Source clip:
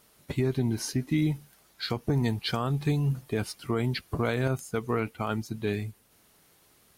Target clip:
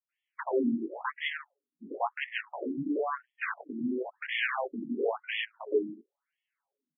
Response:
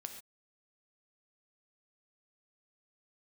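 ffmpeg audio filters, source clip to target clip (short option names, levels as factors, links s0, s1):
-filter_complex "[0:a]highpass=f=42:w=0.5412,highpass=f=42:w=1.3066,afftdn=nr=26:nf=-43,lowpass=f=5500:w=0.5412,lowpass=f=5500:w=1.3066,equalizer=f=92:t=o:w=0.88:g=-10.5,aecho=1:1:7.2:0.95,asplit=2[s0][s1];[s1]acompressor=threshold=0.0251:ratio=16,volume=1.19[s2];[s0][s2]amix=inputs=2:normalize=0,flanger=delay=18.5:depth=3:speed=0.76,asoftclip=type=tanh:threshold=0.178,aeval=exprs='0.158*(cos(1*acos(clip(val(0)/0.158,-1,1)))-cos(1*PI/2))+0.0447*(cos(8*acos(clip(val(0)/0.158,-1,1)))-cos(8*PI/2))':c=same,acrossover=split=280[s3][s4];[s4]adelay=90[s5];[s3][s5]amix=inputs=2:normalize=0,afftfilt=real='re*between(b*sr/1024,240*pow(2500/240,0.5+0.5*sin(2*PI*0.97*pts/sr))/1.41,240*pow(2500/240,0.5+0.5*sin(2*PI*0.97*pts/sr))*1.41)':imag='im*between(b*sr/1024,240*pow(2500/240,0.5+0.5*sin(2*PI*0.97*pts/sr))/1.41,240*pow(2500/240,0.5+0.5*sin(2*PI*0.97*pts/sr))*1.41)':win_size=1024:overlap=0.75,volume=1.5"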